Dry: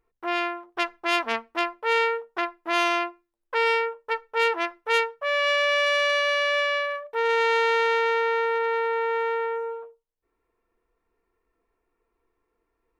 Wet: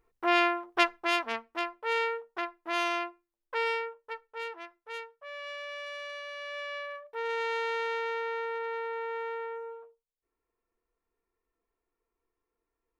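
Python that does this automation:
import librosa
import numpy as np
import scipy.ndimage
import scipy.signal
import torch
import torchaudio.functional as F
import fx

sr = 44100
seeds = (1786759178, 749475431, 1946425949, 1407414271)

y = fx.gain(x, sr, db=fx.line((0.83, 2.0), (1.26, -7.0), (3.59, -7.0), (4.66, -18.0), (6.32, -18.0), (6.98, -10.0)))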